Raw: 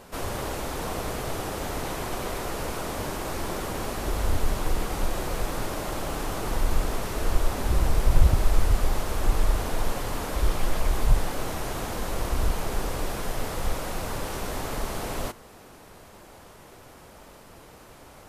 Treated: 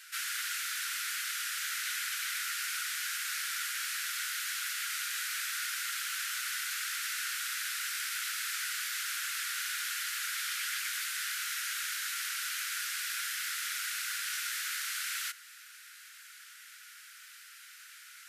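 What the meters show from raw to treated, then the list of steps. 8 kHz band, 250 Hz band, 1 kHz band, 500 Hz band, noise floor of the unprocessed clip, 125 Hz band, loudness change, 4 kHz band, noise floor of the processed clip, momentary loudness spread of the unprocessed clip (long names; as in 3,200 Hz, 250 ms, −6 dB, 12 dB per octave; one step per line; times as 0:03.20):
+3.5 dB, below −40 dB, −10.5 dB, below −40 dB, −49 dBFS, below −40 dB, −3.5 dB, +3.5 dB, −53 dBFS, 22 LU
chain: Chebyshev high-pass filter 1,400 Hz, order 6
level +4 dB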